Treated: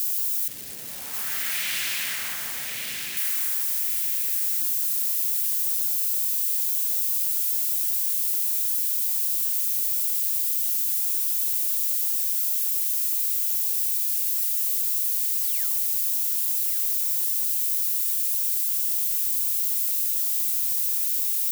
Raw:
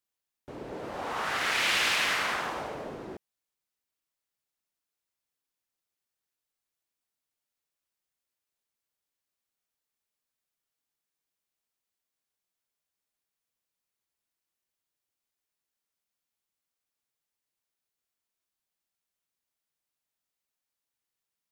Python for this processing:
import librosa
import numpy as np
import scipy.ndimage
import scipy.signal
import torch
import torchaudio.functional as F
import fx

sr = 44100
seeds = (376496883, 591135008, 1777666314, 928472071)

p1 = x + 0.5 * 10.0 ** (-22.5 / 20.0) * np.diff(np.sign(x), prepend=np.sign(x[:1]))
p2 = fx.high_shelf(p1, sr, hz=8700.0, db=7.0)
p3 = fx.spec_paint(p2, sr, seeds[0], shape='fall', start_s=15.36, length_s=0.56, low_hz=290.0, high_hz=8100.0, level_db=-43.0)
p4 = fx.band_shelf(p3, sr, hz=620.0, db=-9.5, octaves=2.4)
p5 = p4 + fx.echo_thinned(p4, sr, ms=1135, feedback_pct=31, hz=580.0, wet_db=-5.5, dry=0)
y = F.gain(torch.from_numpy(p5), -4.5).numpy()